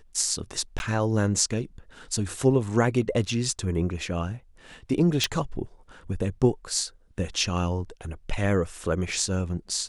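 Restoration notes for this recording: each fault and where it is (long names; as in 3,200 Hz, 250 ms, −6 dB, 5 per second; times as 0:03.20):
0:00.79–0:00.80: drop-out 11 ms
0:05.24: click −8 dBFS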